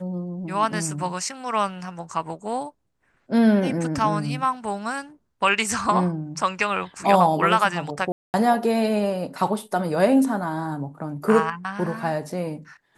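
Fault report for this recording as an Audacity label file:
8.120000	8.340000	drop-out 219 ms

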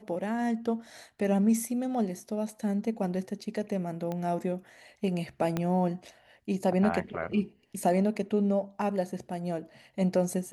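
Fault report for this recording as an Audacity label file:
4.120000	4.120000	click −22 dBFS
5.570000	5.570000	click −16 dBFS

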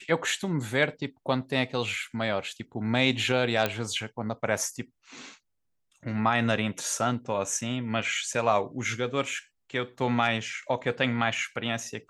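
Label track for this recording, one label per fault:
3.660000	3.660000	click −11 dBFS

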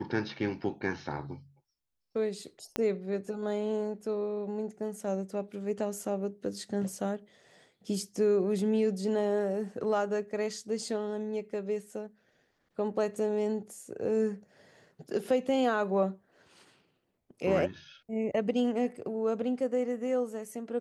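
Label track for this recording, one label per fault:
2.760000	2.760000	click −16 dBFS

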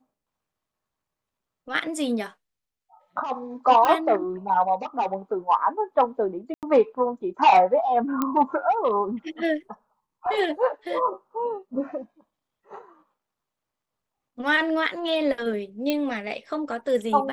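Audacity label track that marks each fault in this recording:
3.850000	3.850000	click −10 dBFS
6.540000	6.630000	drop-out 88 ms
8.220000	8.220000	click −11 dBFS
15.900000	15.900000	click −11 dBFS

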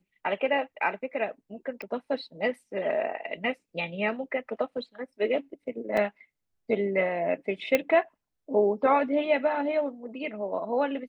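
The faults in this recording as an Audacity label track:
1.820000	1.820000	click −26 dBFS
5.970000	5.970000	drop-out 3.5 ms
7.750000	7.750000	click −9 dBFS

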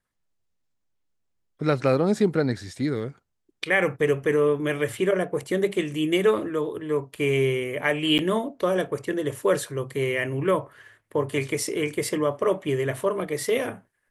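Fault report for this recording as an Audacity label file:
8.180000	8.190000	drop-out 9.1 ms

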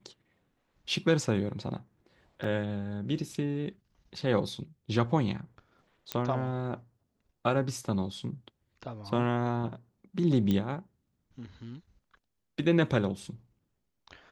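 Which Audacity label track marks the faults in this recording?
2.440000	2.440000	drop-out 4.1 ms
6.120000	6.120000	click −15 dBFS
10.510000	10.510000	click −17 dBFS

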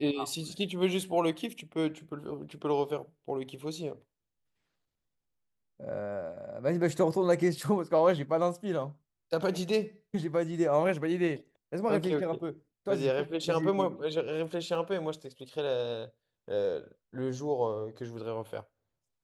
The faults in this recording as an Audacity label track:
14.750000	14.750000	drop-out 2 ms

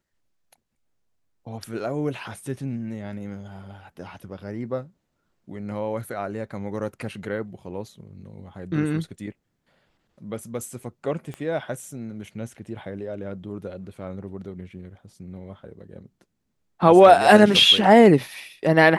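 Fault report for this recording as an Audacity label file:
11.340000	11.340000	click −22 dBFS

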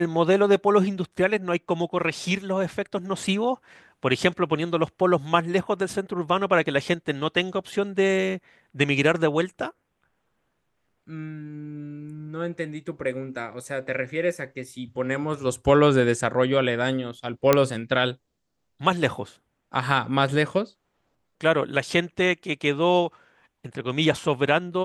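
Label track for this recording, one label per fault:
17.530000	17.530000	click −3 dBFS

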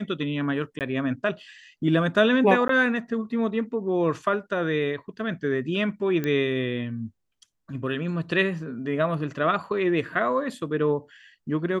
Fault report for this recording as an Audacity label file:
0.790000	0.810000	drop-out 18 ms
2.680000	2.690000	drop-out 13 ms
6.240000	6.240000	click −15 dBFS

